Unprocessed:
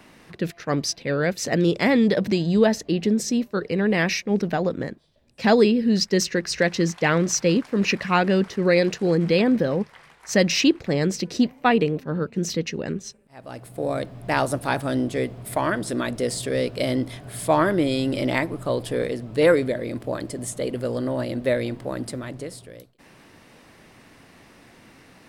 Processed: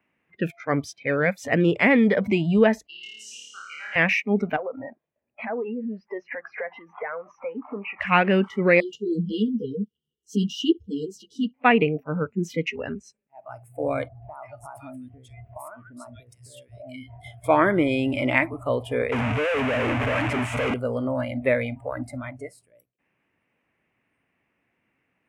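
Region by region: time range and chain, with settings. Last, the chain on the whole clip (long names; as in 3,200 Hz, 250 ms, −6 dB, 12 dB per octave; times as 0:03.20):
0:02.87–0:03.96: resonant band-pass 6,500 Hz, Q 0.89 + high-shelf EQ 8,000 Hz −9 dB + flutter between parallel walls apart 4.7 metres, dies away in 1.5 s
0:04.56–0:08.00: downward compressor 8 to 1, threshold −32 dBFS + mid-hump overdrive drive 21 dB, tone 1,400 Hz, clips at −13.5 dBFS + head-to-tape spacing loss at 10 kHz 31 dB
0:08.80–0:11.54: linear-phase brick-wall band-stop 490–2,800 Hz + string-ensemble chorus
0:14.08–0:17.44: downward compressor 16 to 1, threshold −32 dBFS + multiband delay without the direct sound lows, highs 140 ms, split 1,600 Hz
0:19.12–0:20.74: sign of each sample alone + high-frequency loss of the air 68 metres
whole clip: high shelf with overshoot 3,300 Hz −9.5 dB, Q 3; noise reduction from a noise print of the clip's start 24 dB; high-pass filter 50 Hz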